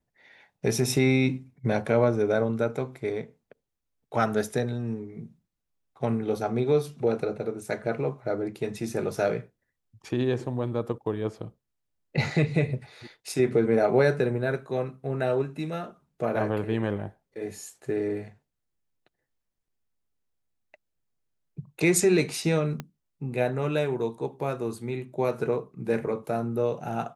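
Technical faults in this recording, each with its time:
22.80 s: pop -19 dBFS

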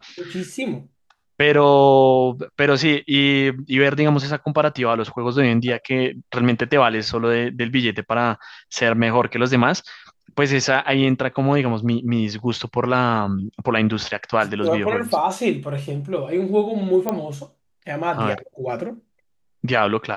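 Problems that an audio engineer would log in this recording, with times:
17.09 s: pop -9 dBFS

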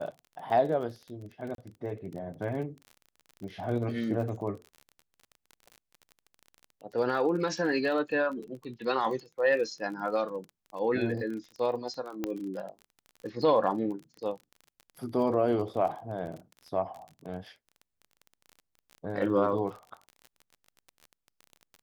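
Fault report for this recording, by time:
crackle 28 per s -38 dBFS
1.55–1.58 s: dropout 32 ms
12.24 s: pop -18 dBFS

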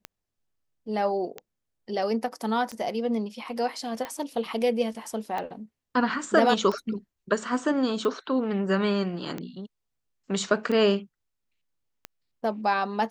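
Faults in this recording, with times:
tick 45 rpm -19 dBFS

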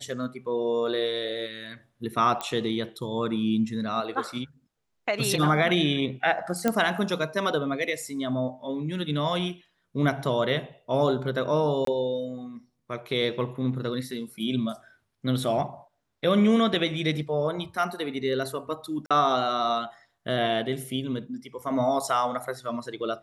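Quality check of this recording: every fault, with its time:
2.41 s: pop -15 dBFS
6.68 s: pop -10 dBFS
11.85–11.87 s: dropout 23 ms
19.06–19.11 s: dropout 46 ms

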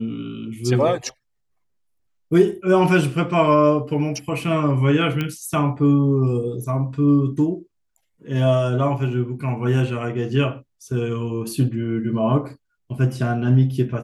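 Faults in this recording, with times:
5.21 s: pop -12 dBFS

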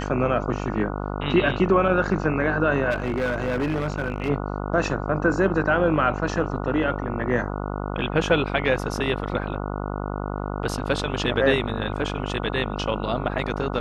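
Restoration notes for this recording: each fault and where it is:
buzz 50 Hz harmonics 29 -29 dBFS
2.90–4.30 s: clipped -20 dBFS

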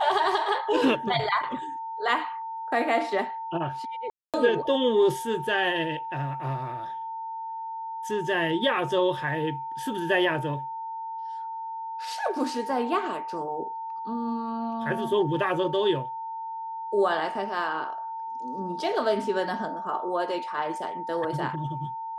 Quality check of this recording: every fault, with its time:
whine 900 Hz -32 dBFS
4.10–4.34 s: dropout 237 ms

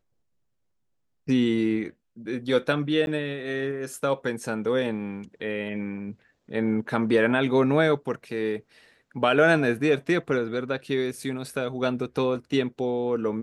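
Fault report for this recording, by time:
3.06–3.07 s: dropout 11 ms

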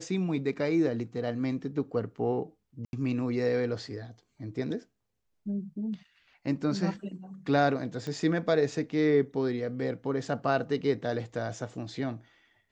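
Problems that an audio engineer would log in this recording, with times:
2.85–2.93 s: dropout 81 ms
8.07 s: pop -24 dBFS

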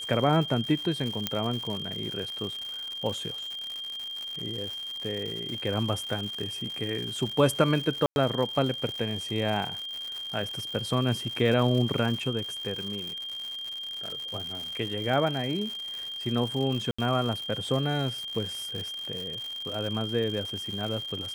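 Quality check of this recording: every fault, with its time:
crackle 190 per s -33 dBFS
whine 3.2 kHz -34 dBFS
1.27 s: pop -10 dBFS
8.06–8.16 s: dropout 101 ms
16.91–16.98 s: dropout 75 ms

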